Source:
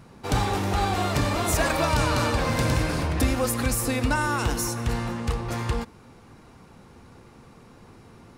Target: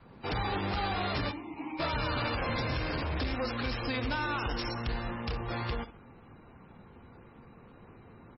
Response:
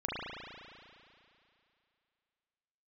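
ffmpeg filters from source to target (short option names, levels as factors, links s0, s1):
-filter_complex "[0:a]asplit=3[s0][s1][s2];[s0]afade=t=out:st=1.3:d=0.02[s3];[s1]asplit=3[s4][s5][s6];[s4]bandpass=f=300:t=q:w=8,volume=1[s7];[s5]bandpass=f=870:t=q:w=8,volume=0.501[s8];[s6]bandpass=f=2240:t=q:w=8,volume=0.355[s9];[s7][s8][s9]amix=inputs=3:normalize=0,afade=t=in:st=1.3:d=0.02,afade=t=out:st=1.79:d=0.02[s10];[s2]afade=t=in:st=1.79:d=0.02[s11];[s3][s10][s11]amix=inputs=3:normalize=0,adynamicequalizer=threshold=0.0141:dfrequency=150:dqfactor=1.4:tfrequency=150:tqfactor=1.4:attack=5:release=100:ratio=0.375:range=1.5:mode=cutabove:tftype=bell,alimiter=limit=0.141:level=0:latency=1:release=398,asoftclip=type=hard:threshold=0.0531,asettb=1/sr,asplit=3[s12][s13][s14];[s12]atrim=end=4.164[s15];[s13]atrim=start=4.16:end=5.24,asetpts=PTS-STARTPTS,afade=t=in:d=0.004:c=qsin,afade=t=out:st=1.076:d=0.004:c=qsin,asubboost=boost=5:cutoff=62[s16];[s14]atrim=start=5.236[s17];[s15][s16]acrossfade=d=0.004:c1=hsin:c2=qsin[s18];[s18][s17]acrossfade=d=0.004:c1=qsin:c2=hsin,crystalizer=i=3:c=0,adynamicsmooth=sensitivity=5:basefreq=2300,aecho=1:1:67|134|201|268:0.178|0.0818|0.0376|0.0173,volume=0.668" -ar 22050 -c:a libmp3lame -b:a 16k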